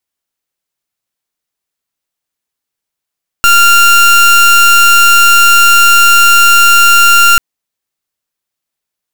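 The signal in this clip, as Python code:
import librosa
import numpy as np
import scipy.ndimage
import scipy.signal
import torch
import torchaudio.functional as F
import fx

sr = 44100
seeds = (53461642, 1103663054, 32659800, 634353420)

y = fx.pulse(sr, length_s=3.94, hz=1390.0, level_db=-5.0, duty_pct=29)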